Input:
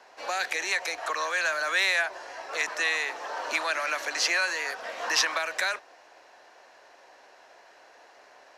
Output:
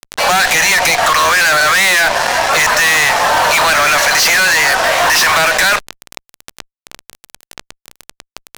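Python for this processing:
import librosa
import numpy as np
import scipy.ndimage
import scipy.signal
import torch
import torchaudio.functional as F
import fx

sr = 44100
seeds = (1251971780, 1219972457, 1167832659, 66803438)

y = scipy.signal.sosfilt(scipy.signal.butter(4, 550.0, 'highpass', fs=sr, output='sos'), x)
y = fx.fuzz(y, sr, gain_db=39.0, gate_db=-45.0)
y = fx.env_flatten(y, sr, amount_pct=50)
y = F.gain(torch.from_numpy(y), 3.5).numpy()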